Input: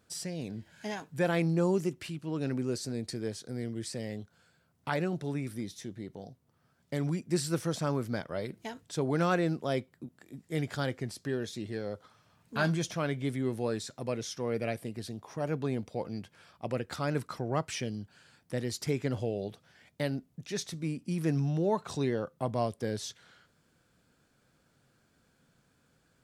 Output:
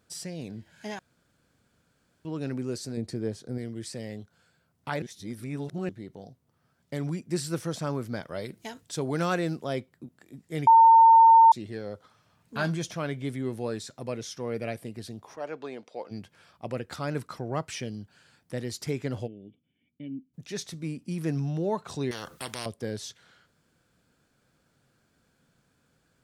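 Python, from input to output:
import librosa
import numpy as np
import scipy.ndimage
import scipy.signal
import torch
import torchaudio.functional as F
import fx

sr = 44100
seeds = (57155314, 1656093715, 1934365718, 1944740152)

y = fx.tilt_shelf(x, sr, db=5.0, hz=1200.0, at=(2.97, 3.58))
y = fx.high_shelf(y, sr, hz=3500.0, db=6.5, at=(8.22, 9.64))
y = fx.bandpass_edges(y, sr, low_hz=430.0, high_hz=fx.line((15.35, 5200.0), (16.1, 7100.0)), at=(15.35, 16.1), fade=0.02)
y = fx.formant_cascade(y, sr, vowel='i', at=(19.26, 20.33), fade=0.02)
y = fx.spectral_comp(y, sr, ratio=4.0, at=(22.11, 22.66))
y = fx.edit(y, sr, fx.room_tone_fill(start_s=0.99, length_s=1.26),
    fx.reverse_span(start_s=5.02, length_s=0.87),
    fx.bleep(start_s=10.67, length_s=0.85, hz=907.0, db=-11.5), tone=tone)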